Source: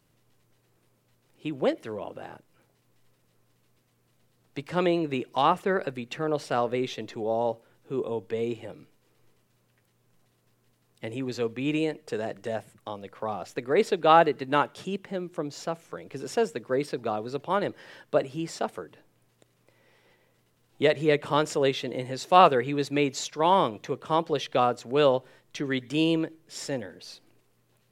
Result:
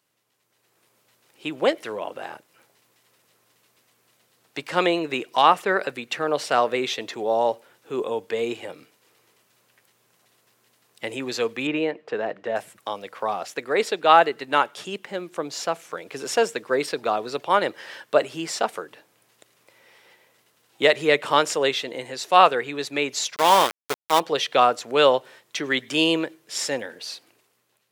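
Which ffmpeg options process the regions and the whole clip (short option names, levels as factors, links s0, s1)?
-filter_complex "[0:a]asettb=1/sr,asplit=3[s0][s1][s2];[s0]atrim=end=11.674[s3];[s1]atrim=start=11.67:end=12.56,asetpts=PTS-STARTPTS,afade=t=in:d=0.004:c=qsin,afade=t=out:st=0.886:d=0.004:c=qsin,highpass=100,lowpass=3300,highshelf=f=2600:g=-8.5[s4];[s2]atrim=start=12.556[s5];[s3][s4]acrossfade=d=0.004:c1=hsin:c2=qsin[s6];[s6][s5]acrossfade=d=0.004:c1=qsin:c2=hsin,asettb=1/sr,asplit=3[s7][s8][s9];[s7]atrim=end=23.364[s10];[s8]atrim=start=23.36:end=24.2,asetpts=PTS-STARTPTS,afade=t=in:d=0.004:c=qsin,afade=t=out:st=0.836:d=0.004:c=qsin,bandreject=f=123.5:t=h:w=4,bandreject=f=247:t=h:w=4,bandreject=f=370.5:t=h:w=4,bandreject=f=494:t=h:w=4,bandreject=f=617.5:t=h:w=4,bandreject=f=741:t=h:w=4,bandreject=f=864.5:t=h:w=4,bandreject=f=988:t=h:w=4,bandreject=f=1111.5:t=h:w=4,bandreject=f=1235:t=h:w=4,bandreject=f=1358.5:t=h:w=4,aeval=exprs='val(0)*gte(abs(val(0)),0.0501)':c=same[s11];[s9]atrim=start=24.196[s12];[s10][s11]acrossfade=d=0.004:c1=hsin:c2=qsin[s13];[s13][s12]acrossfade=d=0.004:c1=qsin:c2=hsin,highpass=f=850:p=1,dynaudnorm=f=200:g=7:m=3.35"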